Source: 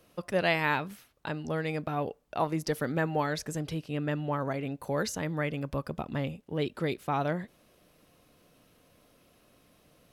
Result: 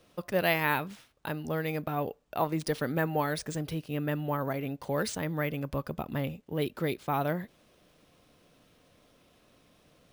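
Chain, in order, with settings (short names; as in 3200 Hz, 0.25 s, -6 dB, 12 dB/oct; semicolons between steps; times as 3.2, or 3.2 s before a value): careless resampling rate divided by 3×, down none, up hold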